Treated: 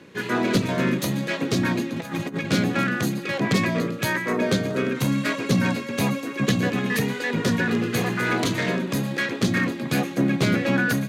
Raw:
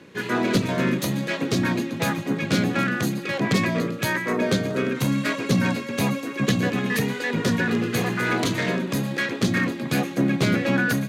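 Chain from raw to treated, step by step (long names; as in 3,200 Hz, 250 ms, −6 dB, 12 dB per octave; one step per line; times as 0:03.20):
0:01.96–0:02.46: compressor whose output falls as the input rises −28 dBFS, ratio −0.5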